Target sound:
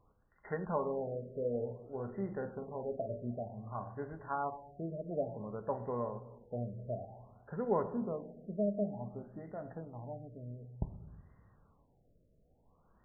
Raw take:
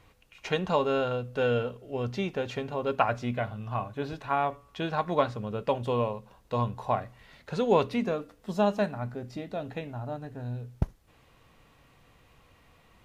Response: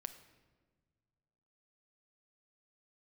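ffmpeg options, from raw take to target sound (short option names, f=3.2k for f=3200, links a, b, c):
-filter_complex "[0:a]asettb=1/sr,asplit=3[a][b][c];[a]atrim=end=1.114[d];[b]atrim=start=1.11:end=3.3,asetpts=PTS-STARTPTS,afade=t=in:d=0.004:c=qsin,afade=t=out:st=2.186:d=0.004:c=qsin,asplit=2[e][f];[f]adelay=46,volume=-8.5dB[g];[e][g]amix=inputs=2:normalize=0,atrim=end_sample=96579[h];[c]atrim=start=3.296[i];[d][h]acrossfade=d=0.004:c1=hsin:c2=qsin[j];[j][i]acrossfade=d=0.004:c1=qsin:c2=hsin[k];[1:a]atrim=start_sample=2205,asetrate=57330,aresample=44100[l];[k][l]afir=irnorm=-1:irlink=0,afftfilt=real='re*lt(b*sr/1024,660*pow(2100/660,0.5+0.5*sin(2*PI*0.55*pts/sr)))':imag='im*lt(b*sr/1024,660*pow(2100/660,0.5+0.5*sin(2*PI*0.55*pts/sr)))':win_size=1024:overlap=0.75,volume=-3dB"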